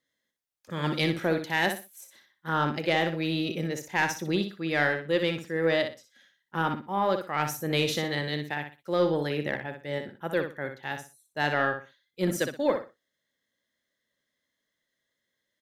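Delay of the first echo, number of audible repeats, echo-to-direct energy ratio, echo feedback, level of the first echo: 61 ms, 3, −7.0 dB, 24%, −7.5 dB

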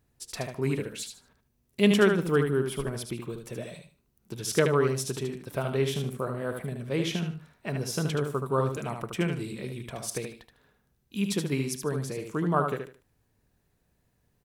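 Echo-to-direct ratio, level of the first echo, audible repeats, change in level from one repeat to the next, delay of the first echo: −5.5 dB, −6.0 dB, 3, −12.5 dB, 75 ms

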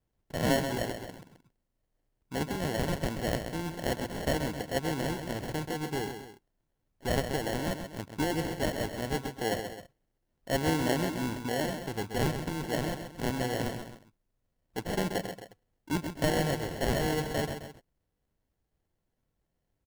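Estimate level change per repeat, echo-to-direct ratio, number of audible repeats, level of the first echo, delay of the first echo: −6.5 dB, −7.0 dB, 2, −8.0 dB, 131 ms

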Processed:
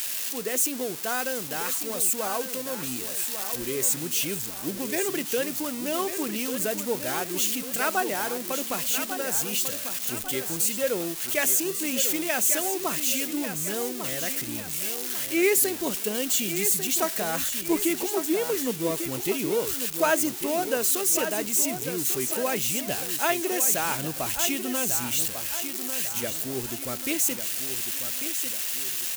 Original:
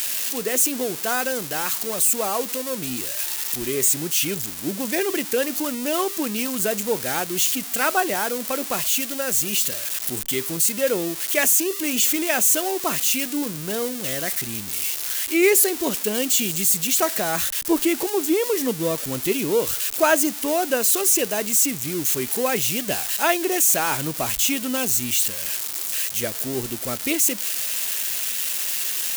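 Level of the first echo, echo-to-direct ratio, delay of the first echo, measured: −9.0 dB, −8.0 dB, 1,146 ms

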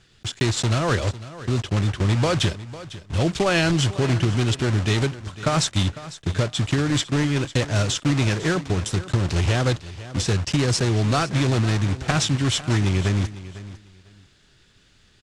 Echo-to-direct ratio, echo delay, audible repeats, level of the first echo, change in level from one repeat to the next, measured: −16.0 dB, 501 ms, 2, −16.0 dB, −14.0 dB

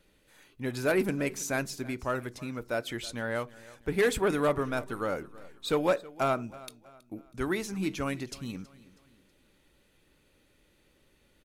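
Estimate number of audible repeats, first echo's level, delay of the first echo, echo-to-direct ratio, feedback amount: 2, −20.0 dB, 322 ms, −19.0 dB, 41%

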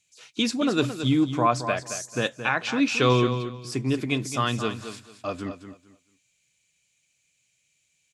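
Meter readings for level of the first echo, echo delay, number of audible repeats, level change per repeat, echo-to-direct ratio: −10.0 dB, 221 ms, 2, −13.0 dB, −10.0 dB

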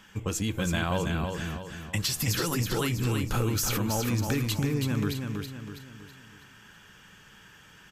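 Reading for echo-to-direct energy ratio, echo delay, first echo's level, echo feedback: −4.0 dB, 325 ms, −5.0 dB, 44%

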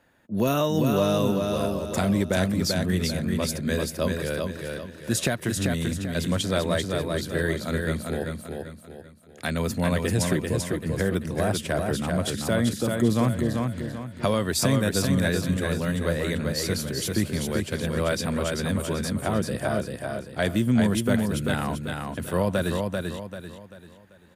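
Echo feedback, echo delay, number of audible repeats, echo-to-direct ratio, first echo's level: 38%, 390 ms, 4, −3.5 dB, −4.0 dB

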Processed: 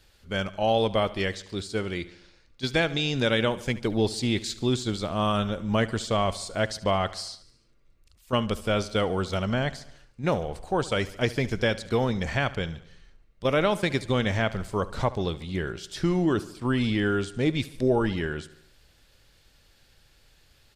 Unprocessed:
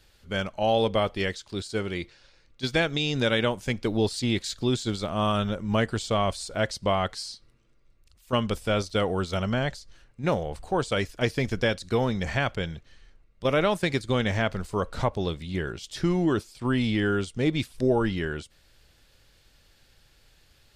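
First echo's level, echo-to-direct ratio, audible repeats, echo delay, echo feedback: −18.0 dB, −16.0 dB, 4, 72 ms, 58%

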